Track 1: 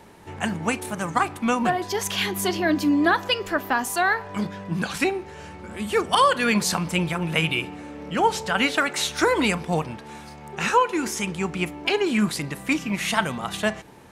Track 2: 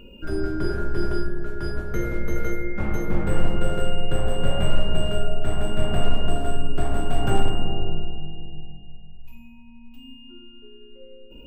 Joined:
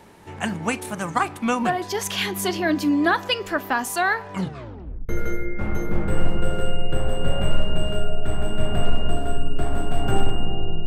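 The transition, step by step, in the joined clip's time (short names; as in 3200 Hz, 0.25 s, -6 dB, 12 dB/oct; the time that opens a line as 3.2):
track 1
4.34 tape stop 0.75 s
5.09 switch to track 2 from 2.28 s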